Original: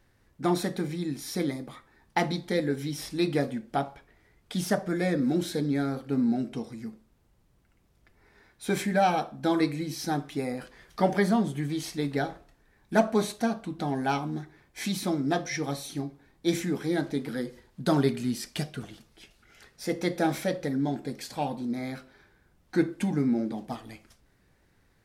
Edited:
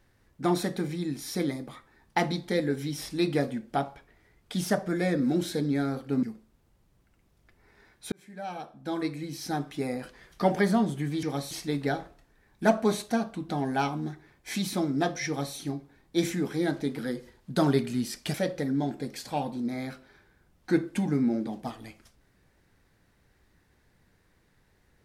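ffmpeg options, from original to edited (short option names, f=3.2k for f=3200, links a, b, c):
-filter_complex "[0:a]asplit=6[a][b][c][d][e][f];[a]atrim=end=6.232[g];[b]atrim=start=6.808:end=8.7,asetpts=PTS-STARTPTS,afade=t=out:st=1.888:d=0.004:c=hsin[h];[c]atrim=start=8.7:end=11.812,asetpts=PTS-STARTPTS,afade=t=in:d=1.75[i];[d]atrim=start=15.568:end=15.852[j];[e]atrim=start=11.808:end=18.642[k];[f]atrim=start=20.388[l];[h][i]concat=n=2:v=0:a=1[m];[g][m]acrossfade=d=0.004:c1=hsin:c2=hsin[n];[n][j]acrossfade=d=0.004:c1=hsin:c2=hsin[o];[o][k]acrossfade=d=0.004:c1=hsin:c2=hsin[p];[p][l]acrossfade=d=0.004:c1=hsin:c2=hsin"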